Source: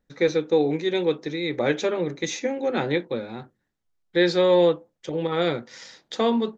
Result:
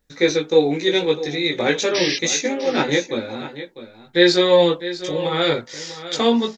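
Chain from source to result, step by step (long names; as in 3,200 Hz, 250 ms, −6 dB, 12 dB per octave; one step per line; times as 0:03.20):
high-shelf EQ 2,600 Hz +10.5 dB
sound drawn into the spectrogram noise, 0:01.94–0:02.17, 1,600–5,900 Hz −26 dBFS
multi-voice chorus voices 4, 0.43 Hz, delay 19 ms, depth 2.1 ms
on a send: single-tap delay 651 ms −13.5 dB
on the sum: level +6 dB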